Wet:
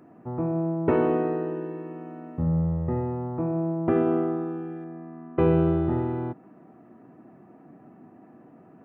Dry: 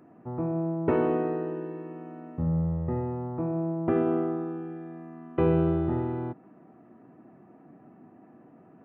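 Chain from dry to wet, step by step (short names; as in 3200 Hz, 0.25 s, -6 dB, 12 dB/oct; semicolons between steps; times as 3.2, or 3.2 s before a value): 4.84–5.39 Bessel low-pass 1700 Hz; gain +2.5 dB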